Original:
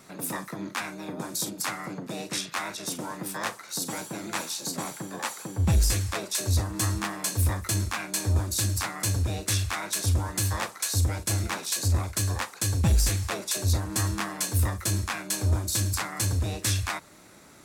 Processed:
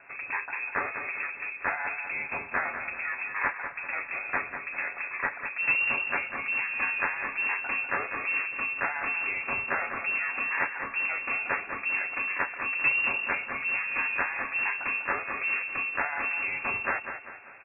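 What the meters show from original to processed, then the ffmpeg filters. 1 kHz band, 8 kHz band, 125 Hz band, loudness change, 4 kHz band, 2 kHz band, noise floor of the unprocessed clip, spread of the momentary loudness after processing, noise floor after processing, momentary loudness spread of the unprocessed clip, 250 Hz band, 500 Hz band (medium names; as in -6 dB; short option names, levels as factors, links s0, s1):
+2.0 dB, under -40 dB, -29.0 dB, -0.5 dB, under -10 dB, +10.0 dB, -48 dBFS, 6 LU, -43 dBFS, 8 LU, -12.5 dB, -3.0 dB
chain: -filter_complex "[0:a]lowshelf=f=270:g=-9.5,aecho=1:1:6.7:0.36,asplit=2[s0][s1];[s1]acrusher=bits=3:mix=0:aa=0.5,volume=0.316[s2];[s0][s2]amix=inputs=2:normalize=0,asoftclip=type=tanh:threshold=0.141,asplit=2[s3][s4];[s4]aecho=0:1:197|394|591|788|985:0.376|0.162|0.0695|0.0299|0.0128[s5];[s3][s5]amix=inputs=2:normalize=0,lowpass=f=2400:t=q:w=0.5098,lowpass=f=2400:t=q:w=0.6013,lowpass=f=2400:t=q:w=0.9,lowpass=f=2400:t=q:w=2.563,afreqshift=-2800,volume=1.5"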